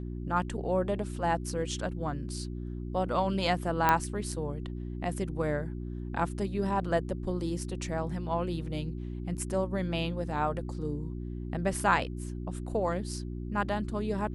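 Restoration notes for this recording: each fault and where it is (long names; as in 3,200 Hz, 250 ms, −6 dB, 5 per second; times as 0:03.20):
mains hum 60 Hz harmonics 6 −37 dBFS
0:03.89: click −10 dBFS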